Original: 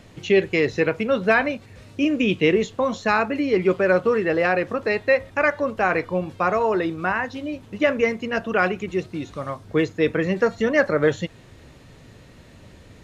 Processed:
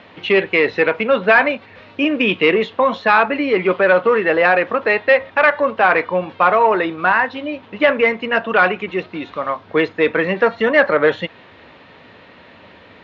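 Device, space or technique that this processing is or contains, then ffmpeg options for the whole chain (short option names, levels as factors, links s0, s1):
overdrive pedal into a guitar cabinet: -filter_complex "[0:a]asplit=2[s0][s1];[s1]highpass=f=720:p=1,volume=3.98,asoftclip=type=tanh:threshold=0.531[s2];[s0][s2]amix=inputs=2:normalize=0,lowpass=f=4300:p=1,volume=0.501,highpass=100,equalizer=f=130:t=q:w=4:g=-10,equalizer=f=360:t=q:w=4:g=-3,equalizer=f=960:t=q:w=4:g=3,lowpass=f=3700:w=0.5412,lowpass=f=3700:w=1.3066,volume=1.5"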